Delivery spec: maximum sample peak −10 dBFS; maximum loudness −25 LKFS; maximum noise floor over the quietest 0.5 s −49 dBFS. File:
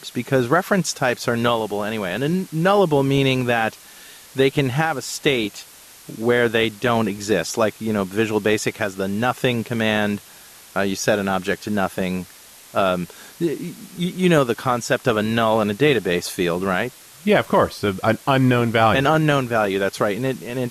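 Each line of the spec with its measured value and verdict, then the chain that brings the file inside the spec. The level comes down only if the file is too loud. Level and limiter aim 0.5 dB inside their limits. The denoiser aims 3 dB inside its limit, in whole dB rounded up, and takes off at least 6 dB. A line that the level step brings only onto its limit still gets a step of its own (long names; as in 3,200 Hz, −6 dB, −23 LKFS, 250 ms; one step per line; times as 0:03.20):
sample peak −5.0 dBFS: out of spec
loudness −20.5 LKFS: out of spec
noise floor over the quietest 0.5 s −45 dBFS: out of spec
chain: level −5 dB
brickwall limiter −10.5 dBFS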